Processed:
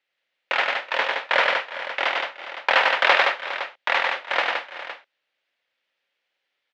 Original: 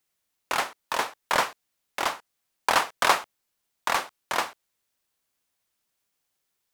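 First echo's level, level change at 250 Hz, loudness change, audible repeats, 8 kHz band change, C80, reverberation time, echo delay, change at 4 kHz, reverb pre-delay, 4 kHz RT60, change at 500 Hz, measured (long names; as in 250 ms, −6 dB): −4.0 dB, −3.0 dB, +5.0 dB, 5, below −10 dB, no reverb audible, no reverb audible, 100 ms, +6.0 dB, no reverb audible, no reverb audible, +6.5 dB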